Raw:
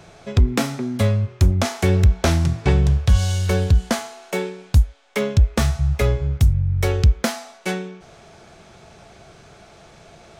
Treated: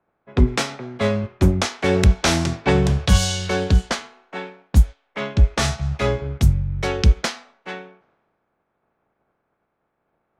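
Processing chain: spectral limiter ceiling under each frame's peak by 14 dB; low-pass opened by the level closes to 1300 Hz, open at -11 dBFS; three-band expander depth 70%; gain -2.5 dB

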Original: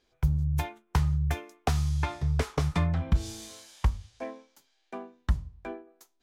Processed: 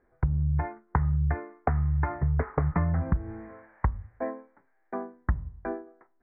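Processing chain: steep low-pass 2000 Hz 72 dB/oct; compressor 6:1, threshold -27 dBFS, peak gain reduction 10 dB; gain +5.5 dB

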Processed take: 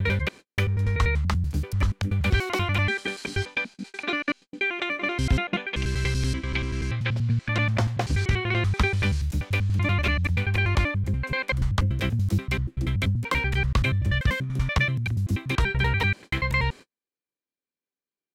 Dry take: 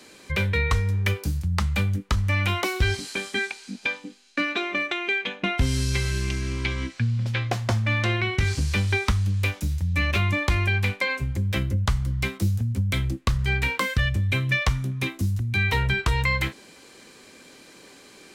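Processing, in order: slices in reverse order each 96 ms, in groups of 6; gate -38 dBFS, range -48 dB; high shelf 5800 Hz -7.5 dB

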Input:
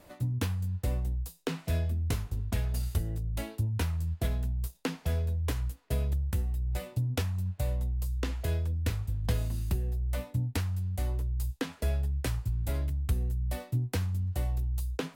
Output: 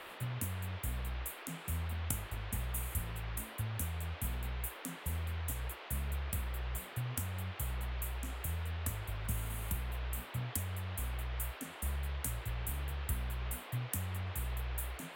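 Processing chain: elliptic band-stop 240–7700 Hz; pre-emphasis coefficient 0.9; band noise 330–3500 Hz -59 dBFS; in parallel at -4.5 dB: bit-crush 5-bit; on the sum: high shelf 2800 Hz -10 dB; gain +12 dB

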